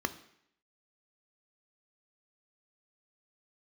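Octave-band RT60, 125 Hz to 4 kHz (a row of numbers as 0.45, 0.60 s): 0.65, 0.70, 0.70, 0.70, 0.75, 0.70 s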